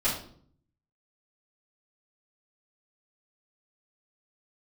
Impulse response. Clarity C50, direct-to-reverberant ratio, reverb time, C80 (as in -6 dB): 5.0 dB, -11.5 dB, 0.55 s, 9.5 dB